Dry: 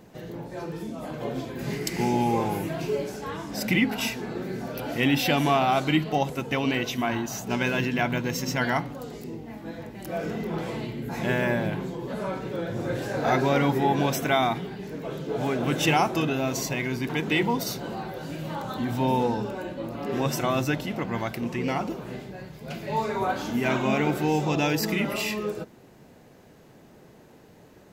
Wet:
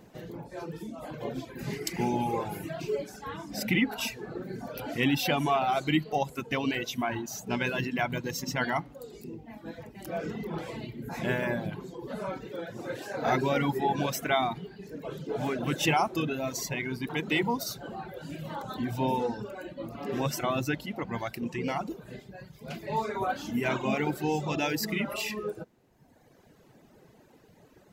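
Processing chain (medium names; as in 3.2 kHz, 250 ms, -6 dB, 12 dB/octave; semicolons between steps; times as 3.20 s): reverb removal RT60 1.4 s; 12.45–13.22 s: high-pass 330 Hz 6 dB/octave; trim -2.5 dB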